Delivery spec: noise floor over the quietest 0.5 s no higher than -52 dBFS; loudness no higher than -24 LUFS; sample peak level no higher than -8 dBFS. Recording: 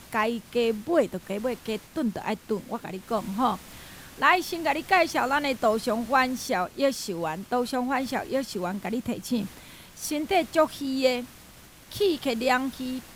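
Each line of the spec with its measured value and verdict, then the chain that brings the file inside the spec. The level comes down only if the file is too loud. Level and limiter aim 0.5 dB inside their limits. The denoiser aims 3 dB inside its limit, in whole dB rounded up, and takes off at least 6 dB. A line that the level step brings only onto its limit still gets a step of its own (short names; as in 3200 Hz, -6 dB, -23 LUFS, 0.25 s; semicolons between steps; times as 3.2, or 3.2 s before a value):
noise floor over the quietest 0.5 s -50 dBFS: fail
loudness -27.0 LUFS: OK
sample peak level -7.0 dBFS: fail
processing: denoiser 6 dB, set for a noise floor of -50 dBFS; limiter -8.5 dBFS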